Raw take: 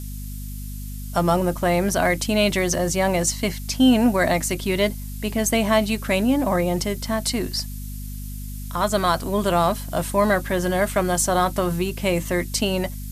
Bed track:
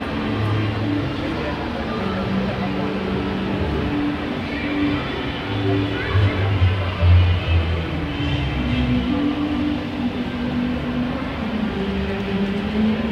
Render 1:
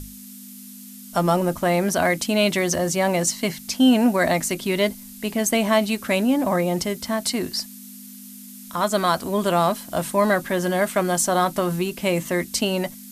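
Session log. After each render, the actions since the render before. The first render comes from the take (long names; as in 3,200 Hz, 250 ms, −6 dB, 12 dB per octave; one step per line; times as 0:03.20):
mains-hum notches 50/100/150 Hz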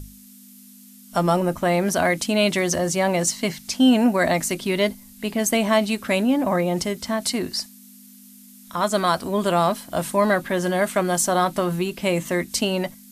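noise reduction from a noise print 6 dB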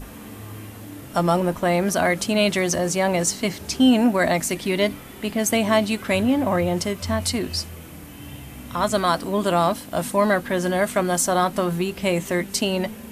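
mix in bed track −17 dB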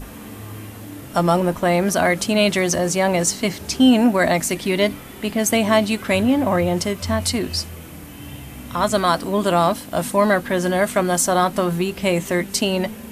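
level +2.5 dB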